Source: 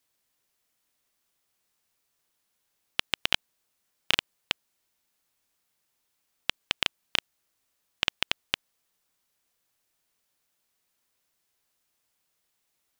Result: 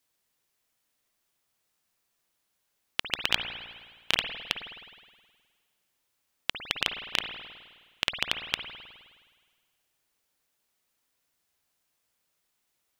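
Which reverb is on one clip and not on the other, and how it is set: spring tank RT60 1.6 s, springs 52 ms, chirp 45 ms, DRR 5.5 dB; gain -1 dB

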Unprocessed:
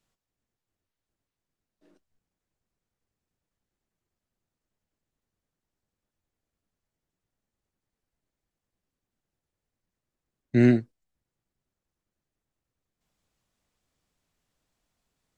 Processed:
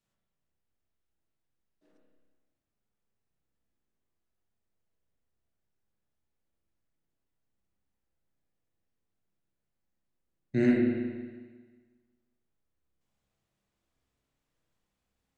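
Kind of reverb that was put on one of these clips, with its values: spring tank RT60 1.5 s, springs 30/36/45 ms, chirp 35 ms, DRR -2 dB; gain -7 dB

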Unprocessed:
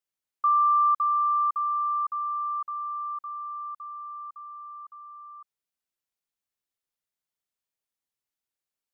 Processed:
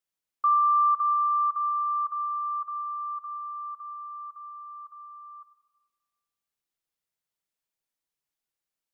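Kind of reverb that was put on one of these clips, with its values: shoebox room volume 1200 m³, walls mixed, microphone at 0.64 m

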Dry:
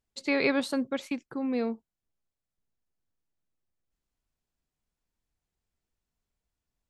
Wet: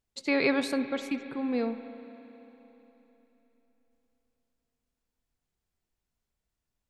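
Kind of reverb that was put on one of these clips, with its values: spring tank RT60 3.6 s, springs 32/58 ms, chirp 35 ms, DRR 9.5 dB

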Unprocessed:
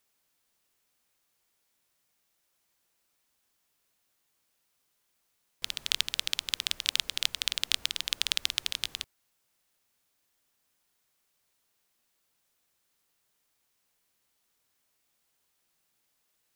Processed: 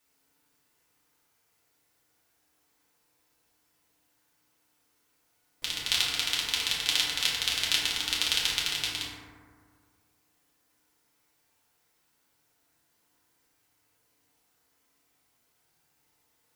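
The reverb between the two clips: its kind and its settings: FDN reverb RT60 1.9 s, low-frequency decay 1.1×, high-frequency decay 0.3×, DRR -8 dB; gain -2 dB

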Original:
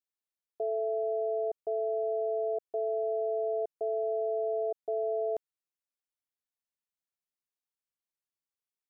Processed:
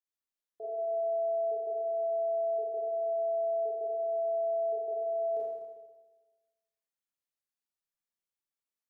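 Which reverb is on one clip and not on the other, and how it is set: Schroeder reverb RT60 1.3 s, combs from 27 ms, DRR -8 dB; gain -10.5 dB

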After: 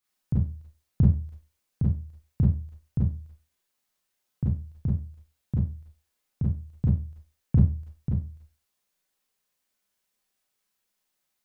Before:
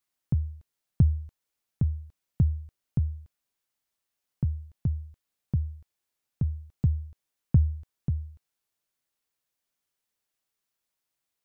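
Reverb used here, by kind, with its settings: Schroeder reverb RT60 0.31 s, combs from 30 ms, DRR -5.5 dB; gain -1.5 dB

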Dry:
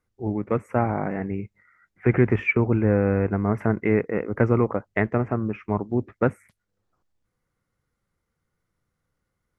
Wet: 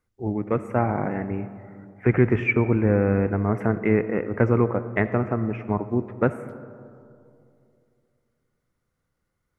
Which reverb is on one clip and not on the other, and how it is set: digital reverb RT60 2.6 s, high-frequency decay 0.3×, pre-delay 25 ms, DRR 12.5 dB

